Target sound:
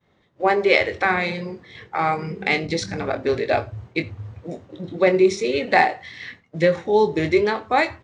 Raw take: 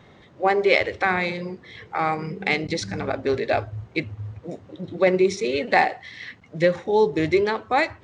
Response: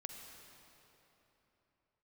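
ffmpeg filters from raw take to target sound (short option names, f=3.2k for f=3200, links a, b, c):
-filter_complex "[0:a]asplit=2[a][b];[b]adelay=24,volume=-9.5dB[c];[a][c]amix=inputs=2:normalize=0,agate=range=-33dB:threshold=-40dB:ratio=3:detection=peak,asplit=2[d][e];[1:a]atrim=start_sample=2205,atrim=end_sample=4410[f];[e][f]afir=irnorm=-1:irlink=0,volume=-3.5dB[g];[d][g]amix=inputs=2:normalize=0,volume=-1.5dB"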